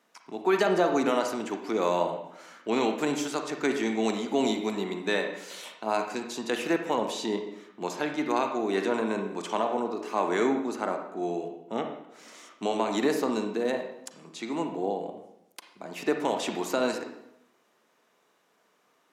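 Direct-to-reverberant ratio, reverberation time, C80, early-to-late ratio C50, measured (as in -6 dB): 4.5 dB, 0.80 s, 9.0 dB, 6.0 dB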